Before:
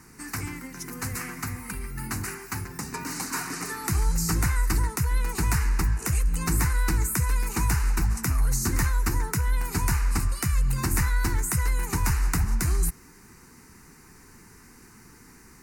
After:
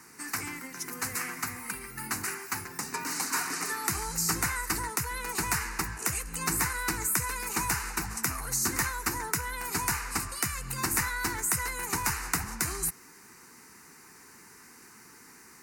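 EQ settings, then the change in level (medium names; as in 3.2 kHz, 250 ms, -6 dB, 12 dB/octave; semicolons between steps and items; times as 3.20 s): high-pass 510 Hz 6 dB/octave; +1.5 dB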